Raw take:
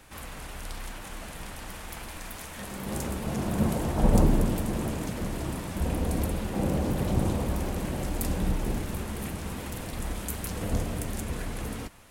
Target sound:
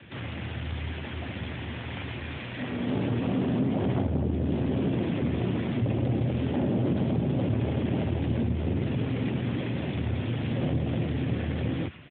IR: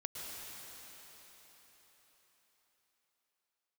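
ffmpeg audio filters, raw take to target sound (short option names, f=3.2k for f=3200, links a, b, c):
-filter_complex "[0:a]acompressor=threshold=-27dB:ratio=6,aresample=8000,asoftclip=type=tanh:threshold=-29dB,aresample=44100,afreqshift=48,acrossover=split=440|1300[a][b][c];[b]adynamicsmooth=sensitivity=2.5:basefreq=750[d];[c]aecho=1:1:104:0.316[e];[a][d][e]amix=inputs=3:normalize=0,volume=9dB" -ar 8000 -c:a libopencore_amrnb -b:a 12200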